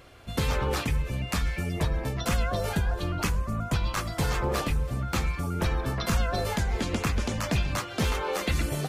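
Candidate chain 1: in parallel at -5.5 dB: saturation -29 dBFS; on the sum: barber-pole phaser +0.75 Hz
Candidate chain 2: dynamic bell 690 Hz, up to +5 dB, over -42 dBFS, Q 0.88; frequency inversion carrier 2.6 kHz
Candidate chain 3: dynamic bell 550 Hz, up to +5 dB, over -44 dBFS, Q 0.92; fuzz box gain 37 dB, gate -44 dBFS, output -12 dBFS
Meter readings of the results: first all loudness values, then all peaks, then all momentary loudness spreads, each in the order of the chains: -30.0 LUFS, -23.0 LUFS, -16.0 LUFS; -15.0 dBFS, -12.0 dBFS, -10.0 dBFS; 3 LU, 3 LU, 2 LU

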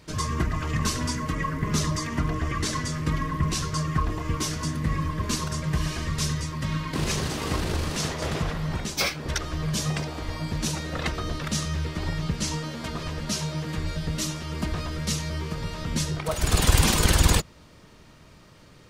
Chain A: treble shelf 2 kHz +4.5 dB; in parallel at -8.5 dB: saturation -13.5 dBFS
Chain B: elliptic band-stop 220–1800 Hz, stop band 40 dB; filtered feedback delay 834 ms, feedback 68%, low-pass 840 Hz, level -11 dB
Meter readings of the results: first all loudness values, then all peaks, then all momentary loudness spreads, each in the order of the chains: -23.0 LUFS, -28.5 LUFS; -3.0 dBFS, -6.0 dBFS; 9 LU, 9 LU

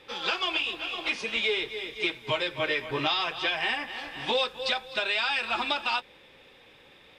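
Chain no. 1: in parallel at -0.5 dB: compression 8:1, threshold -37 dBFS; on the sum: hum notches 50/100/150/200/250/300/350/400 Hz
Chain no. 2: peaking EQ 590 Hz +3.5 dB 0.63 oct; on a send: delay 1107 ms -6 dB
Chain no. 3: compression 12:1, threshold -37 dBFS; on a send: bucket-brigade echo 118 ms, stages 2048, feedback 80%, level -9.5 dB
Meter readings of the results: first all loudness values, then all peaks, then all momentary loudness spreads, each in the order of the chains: -26.0 LUFS, -27.0 LUFS, -39.0 LUFS; -13.0 dBFS, -13.5 dBFS, -25.0 dBFS; 4 LU, 6 LU, 11 LU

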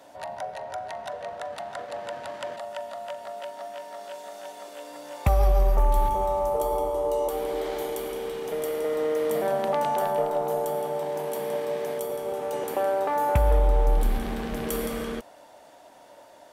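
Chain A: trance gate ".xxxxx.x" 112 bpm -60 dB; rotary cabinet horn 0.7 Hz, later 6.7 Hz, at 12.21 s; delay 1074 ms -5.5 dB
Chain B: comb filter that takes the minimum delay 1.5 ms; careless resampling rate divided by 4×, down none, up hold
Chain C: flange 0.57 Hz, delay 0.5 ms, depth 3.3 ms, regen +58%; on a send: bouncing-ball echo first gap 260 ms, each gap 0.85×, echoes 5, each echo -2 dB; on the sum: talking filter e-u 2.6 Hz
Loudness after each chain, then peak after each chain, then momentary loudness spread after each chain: -30.5 LUFS, -29.0 LUFS, -39.5 LUFS; -12.0 dBFS, -11.0 dBFS, -22.0 dBFS; 17 LU, 15 LU, 17 LU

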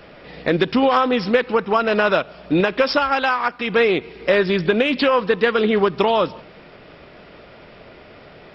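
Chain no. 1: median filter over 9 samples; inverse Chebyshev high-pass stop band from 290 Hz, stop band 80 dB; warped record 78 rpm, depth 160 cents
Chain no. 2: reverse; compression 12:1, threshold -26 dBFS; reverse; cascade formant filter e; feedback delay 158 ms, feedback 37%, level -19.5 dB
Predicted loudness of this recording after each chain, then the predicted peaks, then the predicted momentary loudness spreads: -28.5 LUFS, -39.0 LUFS; -11.5 dBFS, -23.0 dBFS; 7 LU, 17 LU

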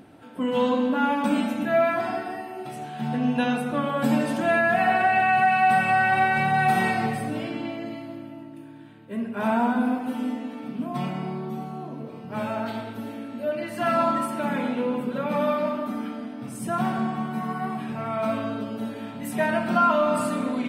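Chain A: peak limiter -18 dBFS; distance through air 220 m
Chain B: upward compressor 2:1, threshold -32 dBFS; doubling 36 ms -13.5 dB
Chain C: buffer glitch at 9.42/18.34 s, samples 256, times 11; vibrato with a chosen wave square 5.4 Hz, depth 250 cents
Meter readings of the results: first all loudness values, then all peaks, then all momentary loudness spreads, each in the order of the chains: -28.5 LUFS, -24.5 LUFS, -24.5 LUFS; -18.5 dBFS, -9.5 dBFS, -10.0 dBFS; 10 LU, 15 LU, 15 LU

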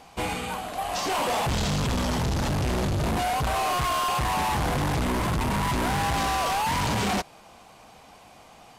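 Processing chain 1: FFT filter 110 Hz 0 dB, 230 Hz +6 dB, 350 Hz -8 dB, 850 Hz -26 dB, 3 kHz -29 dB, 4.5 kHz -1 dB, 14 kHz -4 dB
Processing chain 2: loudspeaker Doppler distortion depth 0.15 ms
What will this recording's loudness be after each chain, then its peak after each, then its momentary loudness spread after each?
-28.5 LUFS, -26.0 LUFS; -16.0 dBFS, -24.0 dBFS; 9 LU, 5 LU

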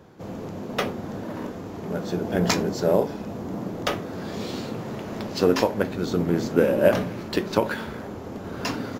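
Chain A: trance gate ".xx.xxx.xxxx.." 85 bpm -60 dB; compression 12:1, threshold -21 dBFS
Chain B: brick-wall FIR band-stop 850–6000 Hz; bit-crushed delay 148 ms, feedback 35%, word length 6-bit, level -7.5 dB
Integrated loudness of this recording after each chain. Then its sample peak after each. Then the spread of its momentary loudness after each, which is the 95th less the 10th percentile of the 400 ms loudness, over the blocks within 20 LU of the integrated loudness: -31.5 LUFS, -26.0 LUFS; -9.0 dBFS, -3.5 dBFS; 10 LU, 14 LU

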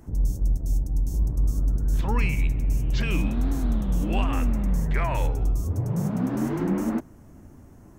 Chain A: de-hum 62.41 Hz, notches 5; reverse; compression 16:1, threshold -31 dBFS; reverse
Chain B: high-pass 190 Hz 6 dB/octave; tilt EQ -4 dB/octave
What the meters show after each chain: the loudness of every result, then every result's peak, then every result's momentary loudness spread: -37.5 LUFS, -21.0 LUFS; -22.5 dBFS, -7.5 dBFS; 4 LU, 2 LU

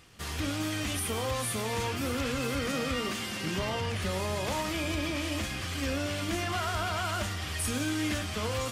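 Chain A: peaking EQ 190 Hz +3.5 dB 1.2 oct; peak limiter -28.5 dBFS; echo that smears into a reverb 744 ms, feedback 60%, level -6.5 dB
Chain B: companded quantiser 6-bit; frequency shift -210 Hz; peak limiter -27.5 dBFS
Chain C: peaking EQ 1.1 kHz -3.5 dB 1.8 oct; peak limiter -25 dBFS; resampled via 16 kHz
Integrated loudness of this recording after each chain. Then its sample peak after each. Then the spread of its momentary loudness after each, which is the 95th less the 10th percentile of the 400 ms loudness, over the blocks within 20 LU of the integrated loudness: -35.5 LUFS, -36.0 LUFS, -34.0 LUFS; -23.5 dBFS, -27.5 dBFS, -24.5 dBFS; 1 LU, 1 LU, 1 LU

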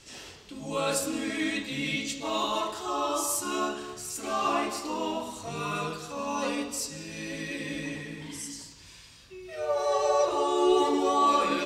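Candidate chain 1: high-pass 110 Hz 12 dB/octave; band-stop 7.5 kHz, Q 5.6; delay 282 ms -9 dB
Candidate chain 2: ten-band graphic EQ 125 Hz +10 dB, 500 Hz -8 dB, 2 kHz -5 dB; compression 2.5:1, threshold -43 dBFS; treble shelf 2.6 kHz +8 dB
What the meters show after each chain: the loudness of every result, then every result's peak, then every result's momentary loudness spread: -29.0 LUFS, -38.5 LUFS; -12.5 dBFS, -21.5 dBFS; 16 LU, 7 LU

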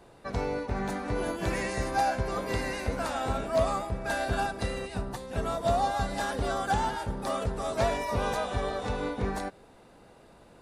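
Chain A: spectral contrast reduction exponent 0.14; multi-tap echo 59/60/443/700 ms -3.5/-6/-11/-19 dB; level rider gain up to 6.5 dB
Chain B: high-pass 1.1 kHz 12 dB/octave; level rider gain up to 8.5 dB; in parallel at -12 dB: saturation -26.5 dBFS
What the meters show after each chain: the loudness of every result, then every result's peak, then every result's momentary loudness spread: -19.5 LUFS, -27.0 LUFS; -2.5 dBFS, -11.0 dBFS; 7 LU, 8 LU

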